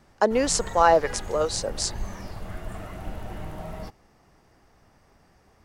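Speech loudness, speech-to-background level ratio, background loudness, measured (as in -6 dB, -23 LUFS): -23.5 LUFS, 15.0 dB, -38.5 LUFS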